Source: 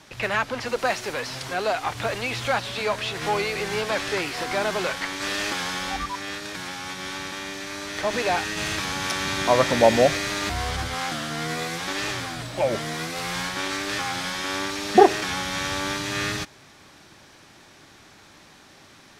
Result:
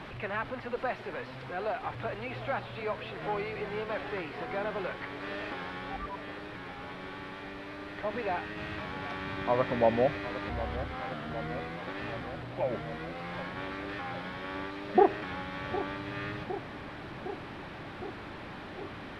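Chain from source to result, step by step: one-bit delta coder 64 kbps, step -26.5 dBFS; distance through air 450 m; filtered feedback delay 760 ms, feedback 83%, low-pass 1.1 kHz, level -12.5 dB; trim -7 dB

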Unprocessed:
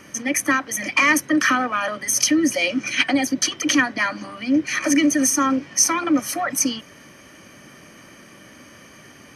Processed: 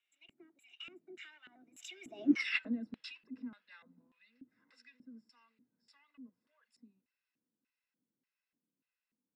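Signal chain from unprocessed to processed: Doppler pass-by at 2.34 s, 59 m/s, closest 3.5 m; LFO band-pass square 1.7 Hz 260–2900 Hz

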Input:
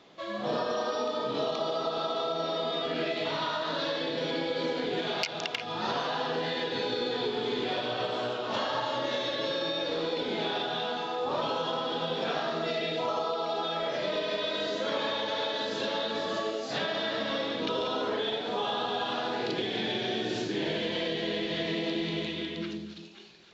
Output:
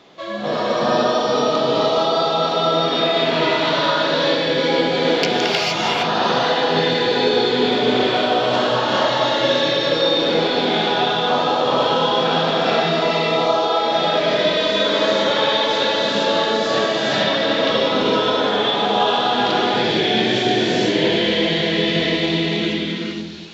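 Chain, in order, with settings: gated-style reverb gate 490 ms rising, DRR -5 dB; trim +7.5 dB

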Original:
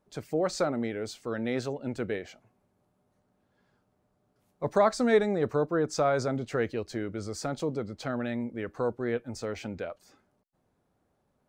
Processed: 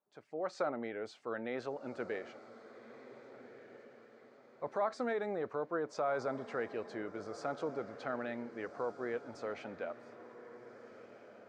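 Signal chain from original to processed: level rider gain up to 10 dB; peak limiter -10.5 dBFS, peak gain reduction 7.5 dB; low-pass 1 kHz 12 dB/octave; differentiator; on a send: echo that smears into a reverb 1560 ms, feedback 43%, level -13.5 dB; on the sum: trim +8 dB

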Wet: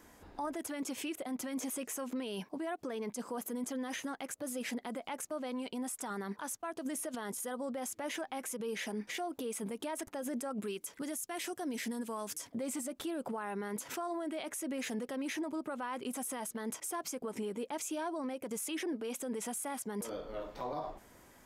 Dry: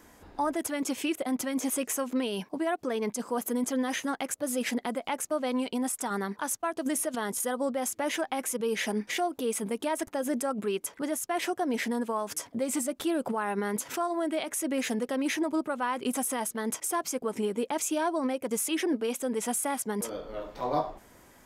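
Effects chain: 10.62–12.50 s: FFT filter 260 Hz 0 dB, 790 Hz -5 dB, 8.3 kHz +7 dB; peak limiter -27 dBFS, peak gain reduction 13 dB; trim -3.5 dB

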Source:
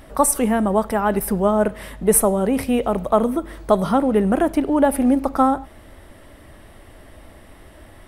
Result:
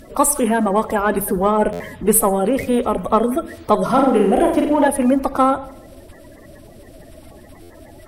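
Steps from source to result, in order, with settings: coarse spectral quantiser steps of 30 dB; hum notches 50/100/150/200 Hz; in parallel at -7 dB: saturation -17 dBFS, distortion -9 dB; 3.85–4.88 s: on the sum: flutter echo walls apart 7.6 m, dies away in 0.64 s; on a send at -19 dB: reverberation RT60 1.0 s, pre-delay 47 ms; on the sum: buffer glitch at 1.72/7.62 s, samples 512, times 6

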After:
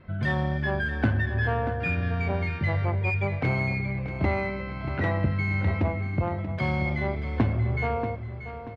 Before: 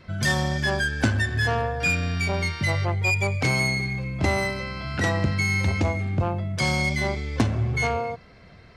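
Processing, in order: distance through air 480 m; feedback delay 634 ms, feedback 39%, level -11 dB; trim -1 dB

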